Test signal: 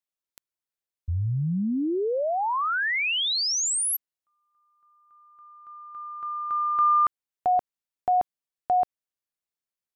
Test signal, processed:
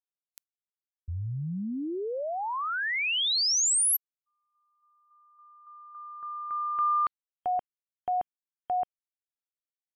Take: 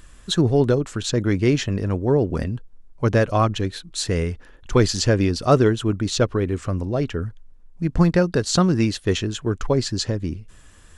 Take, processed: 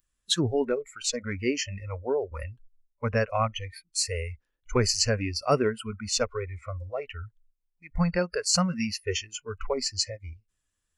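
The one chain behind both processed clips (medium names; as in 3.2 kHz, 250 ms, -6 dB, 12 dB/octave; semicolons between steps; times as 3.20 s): spectral noise reduction 27 dB; treble shelf 2.6 kHz +9 dB; trim -7 dB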